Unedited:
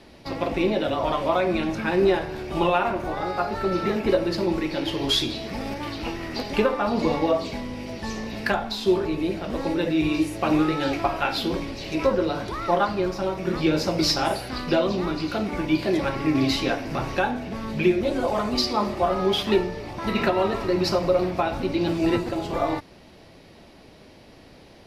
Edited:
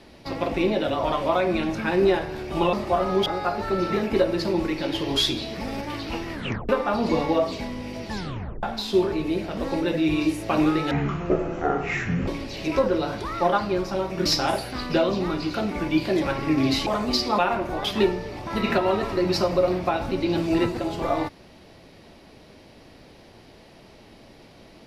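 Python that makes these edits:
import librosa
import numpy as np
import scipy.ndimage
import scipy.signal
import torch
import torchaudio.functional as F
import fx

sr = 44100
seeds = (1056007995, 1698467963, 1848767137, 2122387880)

y = fx.edit(x, sr, fx.swap(start_s=2.73, length_s=0.46, other_s=18.83, other_length_s=0.53),
    fx.tape_stop(start_s=6.26, length_s=0.36),
    fx.tape_stop(start_s=8.05, length_s=0.51),
    fx.speed_span(start_s=10.84, length_s=0.71, speed=0.52),
    fx.cut(start_s=13.53, length_s=0.5),
    fx.cut(start_s=16.64, length_s=1.67), tone=tone)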